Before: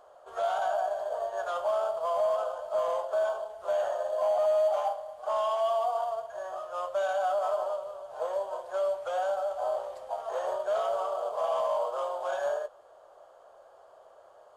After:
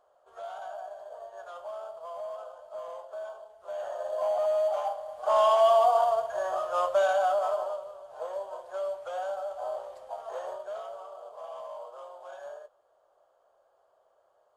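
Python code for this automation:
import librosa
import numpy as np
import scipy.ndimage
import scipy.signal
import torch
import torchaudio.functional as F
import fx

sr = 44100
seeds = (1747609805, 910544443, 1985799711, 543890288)

y = fx.gain(x, sr, db=fx.line((3.6, -11.0), (4.1, -1.5), (4.89, -1.5), (5.42, 7.0), (6.82, 7.0), (7.96, -4.0), (10.35, -4.0), (10.99, -12.5)))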